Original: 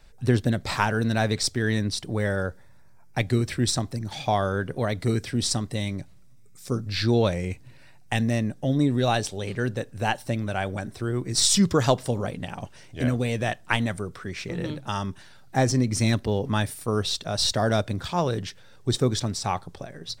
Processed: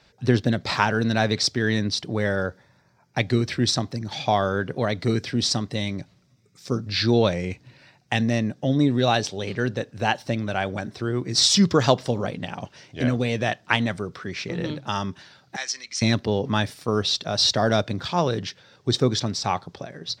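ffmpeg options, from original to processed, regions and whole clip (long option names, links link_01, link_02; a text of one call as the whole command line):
ffmpeg -i in.wav -filter_complex "[0:a]asettb=1/sr,asplit=3[link_01][link_02][link_03];[link_01]atrim=end=15.564[link_04];[link_02]atrim=start=15.56:end=16.02,asetpts=PTS-STARTPTS,afade=type=in:duration=0.004:curve=qsin,afade=type=out:start_time=0.456:duration=0.004:curve=qsin,asuperpass=centerf=4400:order=4:qfactor=0.55,aeval=exprs='val(0)+0.000501*(sin(2*PI*50*n/s)+sin(2*PI*2*50*n/s)/2+sin(2*PI*3*50*n/s)/3+sin(2*PI*4*50*n/s)/4+sin(2*PI*5*50*n/s)/5)':channel_layout=same[link_05];[link_03]atrim=start=16.016[link_06];[link_04][link_05]acrossfade=duration=0.004:curve1=hsin:curve2=qsin[link_07];[link_07][link_06]acrossfade=duration=0.004:curve1=qsin:curve2=hsin,highpass=110,highshelf=frequency=7100:width_type=q:width=1.5:gain=-11,volume=2.5dB" out.wav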